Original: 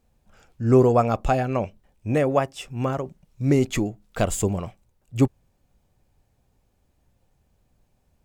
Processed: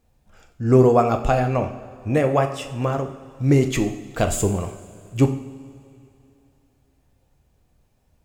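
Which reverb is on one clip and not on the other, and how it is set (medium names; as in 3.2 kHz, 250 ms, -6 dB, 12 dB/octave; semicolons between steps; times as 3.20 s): two-slope reverb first 0.57 s, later 2.8 s, from -15 dB, DRR 5 dB; trim +1.5 dB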